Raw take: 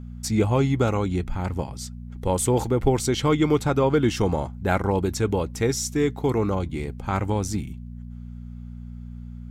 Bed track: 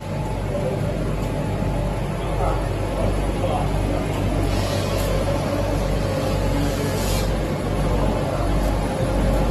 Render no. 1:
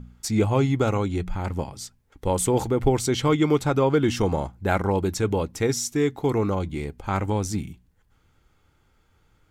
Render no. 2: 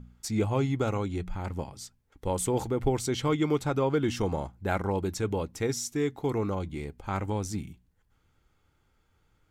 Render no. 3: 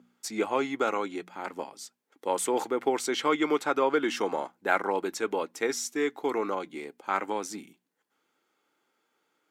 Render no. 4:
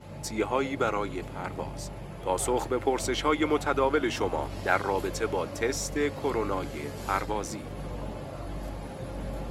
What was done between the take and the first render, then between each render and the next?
hum removal 60 Hz, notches 4
level −6 dB
high-pass filter 270 Hz 24 dB per octave; dynamic equaliser 1,600 Hz, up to +8 dB, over −46 dBFS, Q 0.7
mix in bed track −16 dB

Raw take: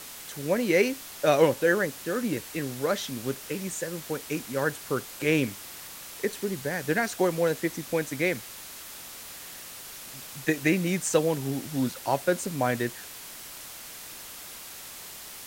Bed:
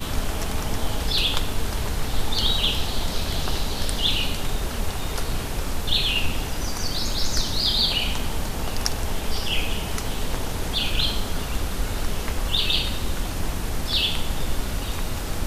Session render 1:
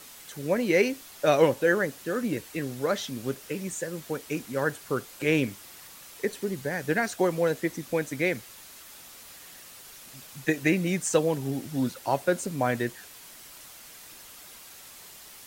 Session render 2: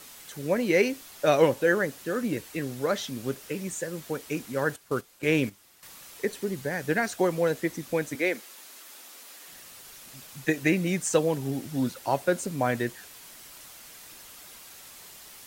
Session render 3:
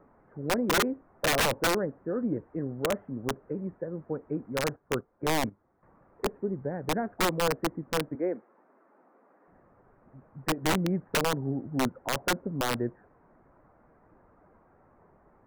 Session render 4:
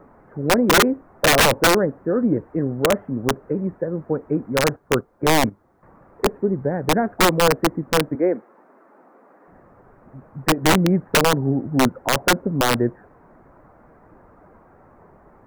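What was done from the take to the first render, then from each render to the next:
broadband denoise 6 dB, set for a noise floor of −43 dBFS
0:04.76–0:05.83: noise gate −34 dBFS, range −11 dB; 0:08.15–0:09.48: high-pass filter 240 Hz 24 dB per octave
Gaussian smoothing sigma 7.9 samples; wrap-around overflow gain 19.5 dB
level +10.5 dB

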